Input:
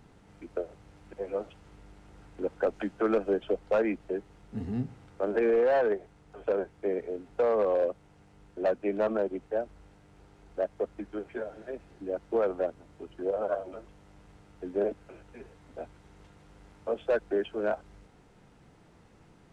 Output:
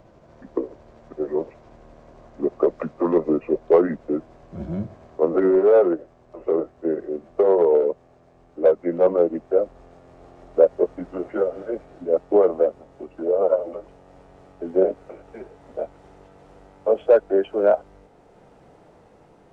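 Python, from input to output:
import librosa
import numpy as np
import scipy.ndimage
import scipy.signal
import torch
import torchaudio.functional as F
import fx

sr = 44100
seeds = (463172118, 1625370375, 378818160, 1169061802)

y = fx.pitch_glide(x, sr, semitones=-5.0, runs='ending unshifted')
y = fx.rider(y, sr, range_db=4, speed_s=2.0)
y = fx.peak_eq(y, sr, hz=590.0, db=13.0, octaves=1.7)
y = y * 10.0 ** (1.5 / 20.0)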